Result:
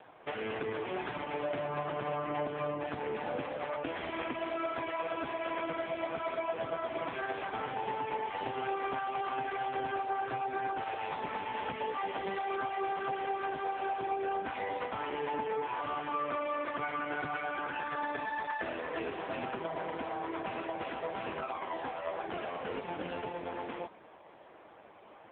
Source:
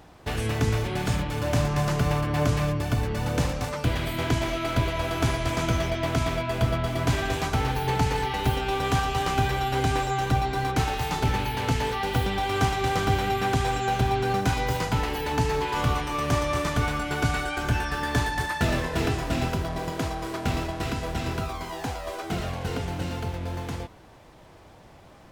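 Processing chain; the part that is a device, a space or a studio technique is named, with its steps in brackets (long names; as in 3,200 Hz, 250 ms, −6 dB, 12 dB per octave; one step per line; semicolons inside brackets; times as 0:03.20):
voicemail (band-pass filter 340–2,900 Hz; downward compressor 8 to 1, threshold −32 dBFS, peak gain reduction 10.5 dB; level +2.5 dB; AMR narrowband 5.15 kbit/s 8,000 Hz)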